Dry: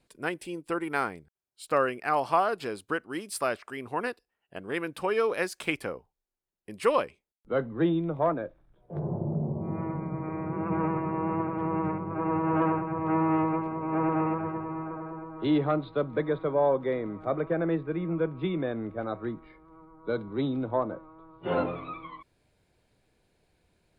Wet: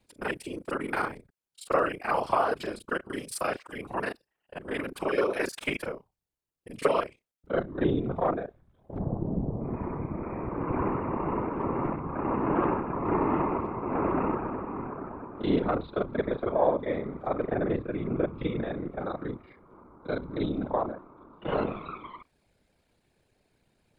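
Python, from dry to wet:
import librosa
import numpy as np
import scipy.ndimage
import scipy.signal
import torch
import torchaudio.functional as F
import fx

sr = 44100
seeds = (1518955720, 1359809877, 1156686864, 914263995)

y = fx.local_reverse(x, sr, ms=31.0)
y = fx.whisperise(y, sr, seeds[0])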